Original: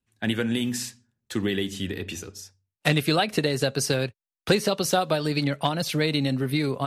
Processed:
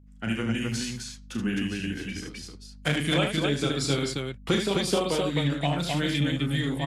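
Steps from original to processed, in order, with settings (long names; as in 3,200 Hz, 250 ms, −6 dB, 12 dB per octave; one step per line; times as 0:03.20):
formants moved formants −3 semitones
mains hum 50 Hz, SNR 22 dB
loudspeakers that aren't time-aligned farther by 12 metres −6 dB, 26 metres −6 dB, 89 metres −3 dB
level −4.5 dB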